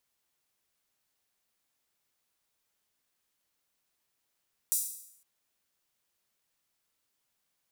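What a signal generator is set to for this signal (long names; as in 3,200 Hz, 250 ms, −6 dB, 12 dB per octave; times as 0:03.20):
open synth hi-hat length 0.51 s, high-pass 8,000 Hz, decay 0.72 s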